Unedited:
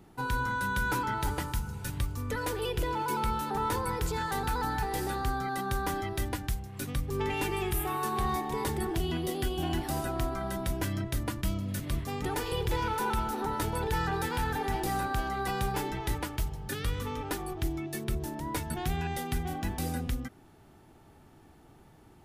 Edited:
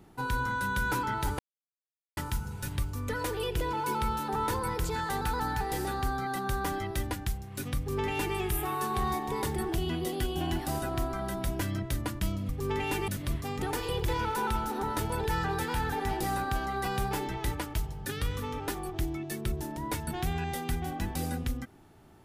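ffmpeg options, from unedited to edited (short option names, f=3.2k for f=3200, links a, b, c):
-filter_complex "[0:a]asplit=4[a][b][c][d];[a]atrim=end=1.39,asetpts=PTS-STARTPTS,afade=t=out:st=1.386:d=0.004:c=hsin,apad=pad_dur=0.78[e];[b]atrim=start=1.39:end=11.712,asetpts=PTS-STARTPTS,afade=t=in:d=0.004:c=hsin[f];[c]atrim=start=6.988:end=7.582[g];[d]atrim=start=11.708[h];[e][f]concat=n=2:v=0:a=1[i];[i][g]acrossfade=d=0.004:c1=hsin:c2=hsin[j];[j][h]acrossfade=d=0.004:c1=hsin:c2=hsin"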